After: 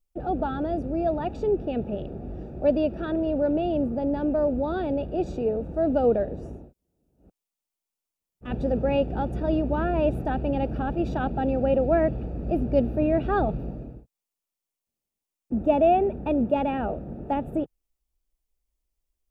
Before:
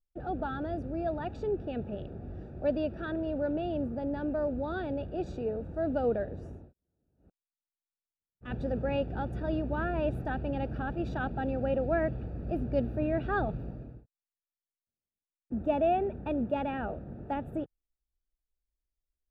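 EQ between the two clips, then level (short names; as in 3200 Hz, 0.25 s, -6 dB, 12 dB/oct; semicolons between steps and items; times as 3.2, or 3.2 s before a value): fifteen-band EQ 100 Hz -8 dB, 1600 Hz -8 dB, 4000 Hz -4 dB; +8.0 dB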